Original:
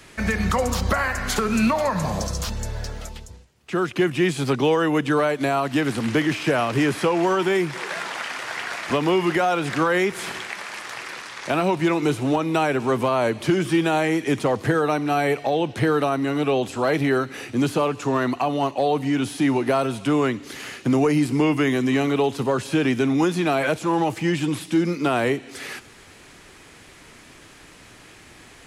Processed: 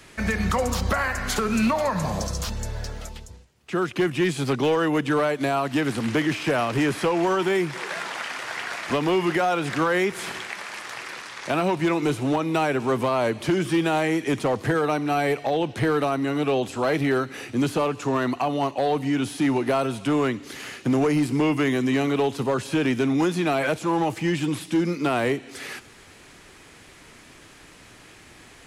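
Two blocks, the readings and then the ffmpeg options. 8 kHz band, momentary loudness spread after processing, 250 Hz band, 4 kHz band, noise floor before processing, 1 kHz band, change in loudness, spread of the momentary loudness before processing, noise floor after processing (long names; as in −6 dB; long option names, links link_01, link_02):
−1.5 dB, 9 LU, −2.0 dB, −1.5 dB, −47 dBFS, −2.0 dB, −2.0 dB, 9 LU, −49 dBFS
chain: -af "asoftclip=type=hard:threshold=-14.5dB,volume=-1.5dB"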